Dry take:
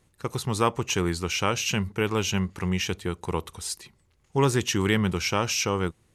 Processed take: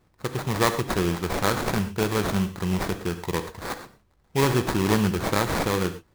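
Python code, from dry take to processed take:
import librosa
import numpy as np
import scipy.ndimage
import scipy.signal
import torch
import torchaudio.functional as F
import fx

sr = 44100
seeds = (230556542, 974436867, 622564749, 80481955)

y = fx.sample_hold(x, sr, seeds[0], rate_hz=2900.0, jitter_pct=20)
y = fx.rev_gated(y, sr, seeds[1], gate_ms=140, shape='flat', drr_db=8.5)
y = y * 10.0 ** (1.0 / 20.0)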